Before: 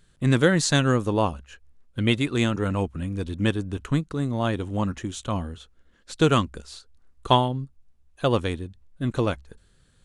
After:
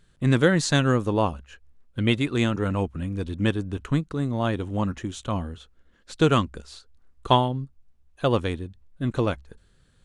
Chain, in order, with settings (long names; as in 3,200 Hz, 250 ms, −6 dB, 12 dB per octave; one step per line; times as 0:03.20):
high-shelf EQ 5,700 Hz −5.5 dB